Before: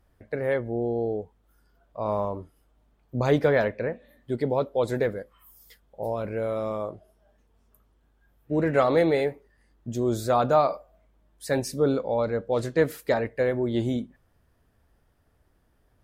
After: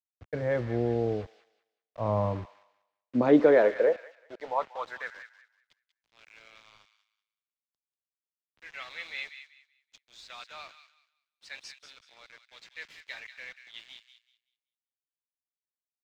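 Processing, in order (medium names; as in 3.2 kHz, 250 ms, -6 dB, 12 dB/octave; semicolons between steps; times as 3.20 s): band-stop 400 Hz, Q 12; in parallel at -1.5 dB: peak limiter -18.5 dBFS, peak gain reduction 9.5 dB; on the sum: high-pass sweep 69 Hz -> 2.5 kHz, 1.83–5.64 s; word length cut 6-bit, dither none; distance through air 180 m; on a send: feedback echo behind a high-pass 190 ms, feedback 34%, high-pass 1.5 kHz, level -7.5 dB; on the sum: three bands expanded up and down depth 40%; trim -8 dB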